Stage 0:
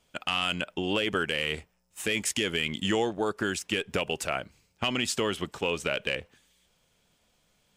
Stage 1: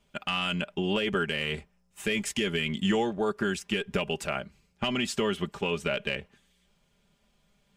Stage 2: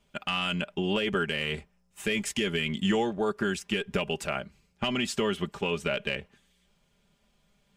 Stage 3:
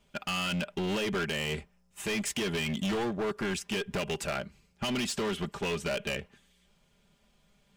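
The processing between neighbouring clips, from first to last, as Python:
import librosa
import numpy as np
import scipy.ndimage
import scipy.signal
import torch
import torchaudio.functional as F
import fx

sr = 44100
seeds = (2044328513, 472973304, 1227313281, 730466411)

y1 = fx.bass_treble(x, sr, bass_db=5, treble_db=-5)
y1 = y1 + 0.59 * np.pad(y1, (int(5.0 * sr / 1000.0), 0))[:len(y1)]
y1 = y1 * librosa.db_to_amplitude(-2.0)
y2 = y1
y3 = np.clip(y2, -10.0 ** (-29.5 / 20.0), 10.0 ** (-29.5 / 20.0))
y3 = y3 * librosa.db_to_amplitude(1.5)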